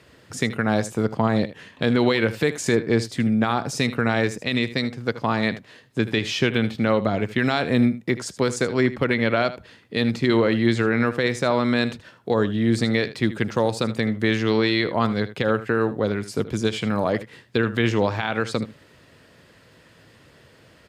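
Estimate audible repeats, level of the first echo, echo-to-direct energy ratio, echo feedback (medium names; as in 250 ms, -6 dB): 1, -15.0 dB, -15.0 dB, no regular repeats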